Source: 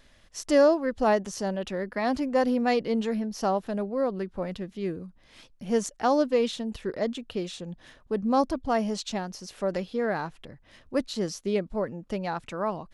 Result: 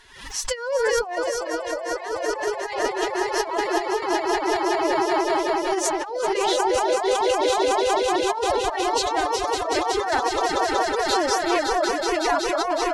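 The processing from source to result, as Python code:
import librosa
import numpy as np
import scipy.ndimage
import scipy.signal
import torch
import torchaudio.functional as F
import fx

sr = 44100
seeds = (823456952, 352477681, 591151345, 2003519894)

y = fx.low_shelf_res(x, sr, hz=490.0, db=-10.0, q=1.5)
y = fx.echo_swell(y, sr, ms=186, loudest=5, wet_db=-7)
y = fx.over_compress(y, sr, threshold_db=-28.0, ratio=-0.5)
y = fx.pitch_keep_formants(y, sr, semitones=9.0)
y = fx.dereverb_blind(y, sr, rt60_s=0.53)
y = fx.pre_swell(y, sr, db_per_s=84.0)
y = F.gain(torch.from_numpy(y), 7.0).numpy()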